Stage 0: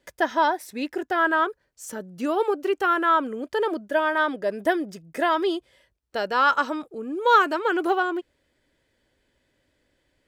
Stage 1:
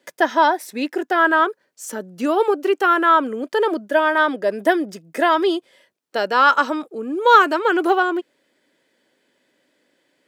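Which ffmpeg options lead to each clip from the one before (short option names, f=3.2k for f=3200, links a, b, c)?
-af "highpass=f=190:w=0.5412,highpass=f=190:w=1.3066,volume=5.5dB"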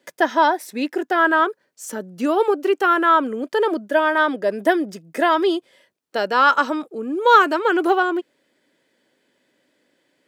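-af "lowshelf=f=190:g=4.5,volume=-1dB"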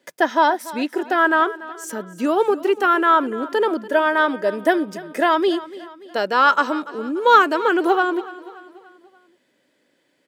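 -af "aecho=1:1:289|578|867|1156:0.133|0.0653|0.032|0.0157"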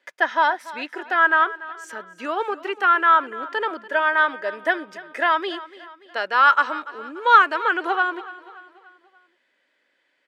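-af "bandpass=f=1.8k:t=q:w=0.98:csg=0,volume=2dB"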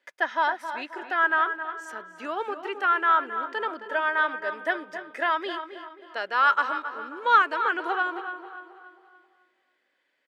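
-filter_complex "[0:a]asplit=2[a][b];[b]adelay=267,lowpass=f=2.1k:p=1,volume=-9.5dB,asplit=2[c][d];[d]adelay=267,lowpass=f=2.1k:p=1,volume=0.44,asplit=2[e][f];[f]adelay=267,lowpass=f=2.1k:p=1,volume=0.44,asplit=2[g][h];[h]adelay=267,lowpass=f=2.1k:p=1,volume=0.44,asplit=2[i][j];[j]adelay=267,lowpass=f=2.1k:p=1,volume=0.44[k];[a][c][e][g][i][k]amix=inputs=6:normalize=0,volume=-5.5dB"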